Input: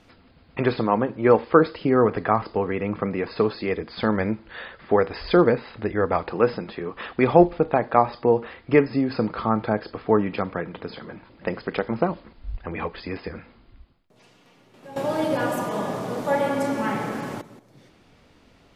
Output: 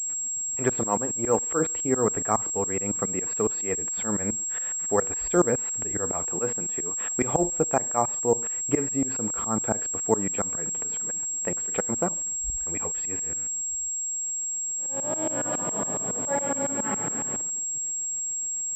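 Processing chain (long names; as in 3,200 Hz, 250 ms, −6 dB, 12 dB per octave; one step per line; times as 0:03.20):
0:13.16–0:15.46: spectrum smeared in time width 115 ms
shaped tremolo saw up 7.2 Hz, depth 100%
switching amplifier with a slow clock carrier 7,600 Hz
level −1.5 dB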